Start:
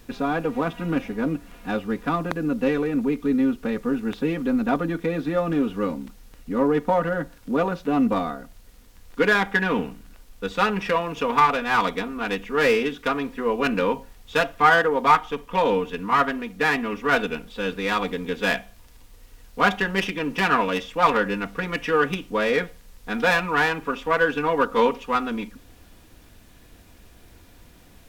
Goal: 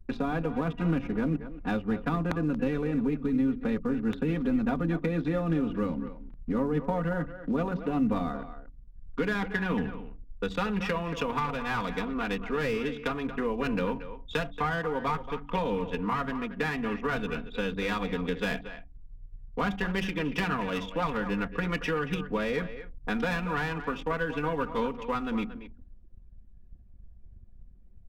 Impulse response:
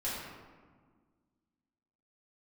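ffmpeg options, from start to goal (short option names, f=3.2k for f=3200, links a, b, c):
-filter_complex "[0:a]anlmdn=0.631,acrossover=split=170[a][b];[b]acompressor=threshold=-34dB:ratio=6[c];[a][c]amix=inputs=2:normalize=0,bandreject=f=47.51:t=h:w=4,bandreject=f=95.02:t=h:w=4,bandreject=f=142.53:t=h:w=4,bandreject=f=190.04:t=h:w=4,bandreject=f=237.55:t=h:w=4,bandreject=f=285.06:t=h:w=4,asplit=2[d][e];[e]adelay=230,highpass=300,lowpass=3.4k,asoftclip=type=hard:threshold=-26dB,volume=-11dB[f];[d][f]amix=inputs=2:normalize=0,volume=4.5dB"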